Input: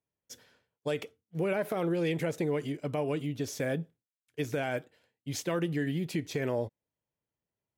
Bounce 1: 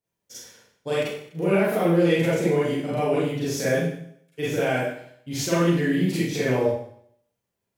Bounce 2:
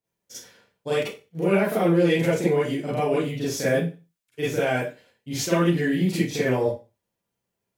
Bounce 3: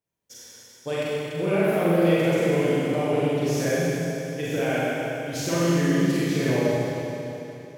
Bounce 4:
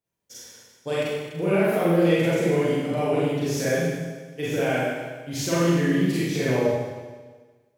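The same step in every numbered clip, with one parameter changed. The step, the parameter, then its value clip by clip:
Schroeder reverb, RT60: 0.65, 0.3, 3.2, 1.4 s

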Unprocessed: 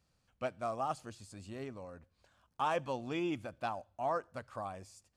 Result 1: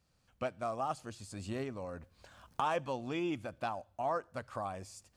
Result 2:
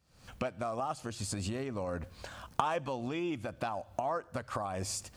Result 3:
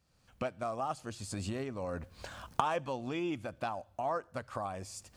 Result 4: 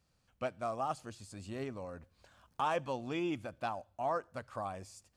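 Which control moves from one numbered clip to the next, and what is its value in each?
recorder AGC, rising by: 13, 85, 34, 5 dB/s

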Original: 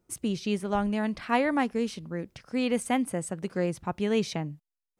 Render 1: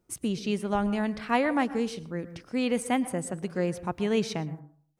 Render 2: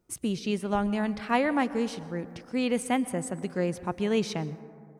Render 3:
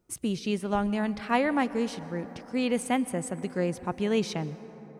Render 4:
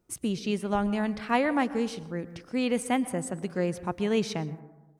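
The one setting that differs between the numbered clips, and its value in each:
plate-style reverb, RT60: 0.51, 2.3, 5.1, 1.1 s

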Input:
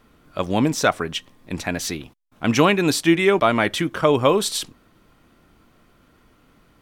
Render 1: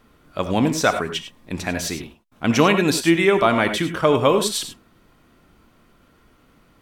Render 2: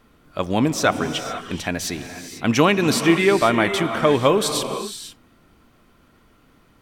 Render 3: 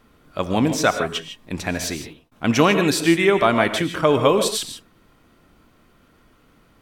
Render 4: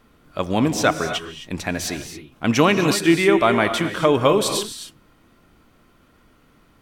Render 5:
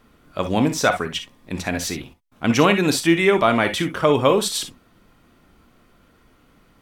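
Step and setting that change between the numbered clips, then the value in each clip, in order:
non-linear reverb, gate: 120, 520, 180, 290, 80 ms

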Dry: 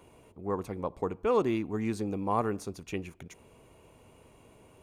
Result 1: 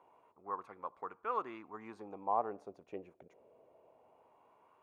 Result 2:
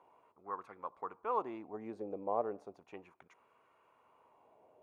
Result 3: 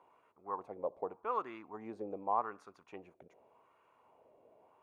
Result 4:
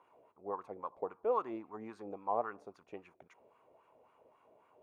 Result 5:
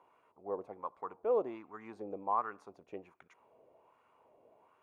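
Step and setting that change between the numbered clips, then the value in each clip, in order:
wah, rate: 0.23, 0.34, 0.85, 3.7, 1.3 Hz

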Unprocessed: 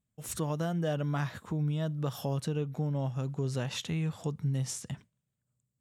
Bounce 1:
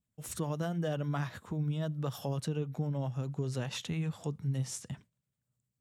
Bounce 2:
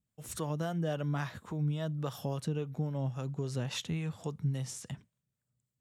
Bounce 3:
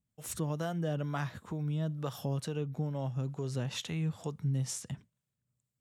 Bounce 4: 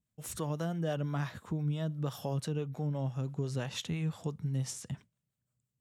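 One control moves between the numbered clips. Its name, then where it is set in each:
harmonic tremolo, rate: 10, 3.6, 2.2, 5.9 Hz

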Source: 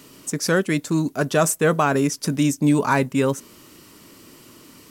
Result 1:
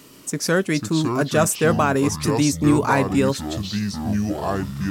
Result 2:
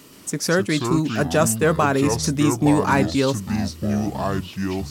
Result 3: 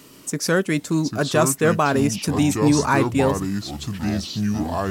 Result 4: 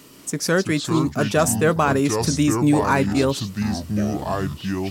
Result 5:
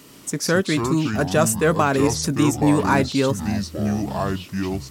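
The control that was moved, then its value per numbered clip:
echoes that change speed, time: 355, 122, 656, 194, 81 ms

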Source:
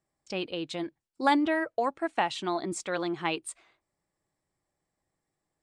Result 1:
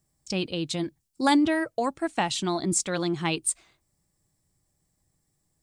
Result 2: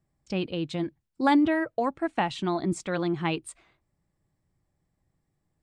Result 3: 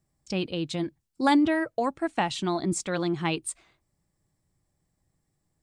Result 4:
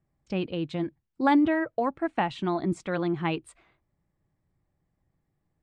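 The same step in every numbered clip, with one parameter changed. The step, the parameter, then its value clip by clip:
tone controls, treble: +14, -3, +6, -13 dB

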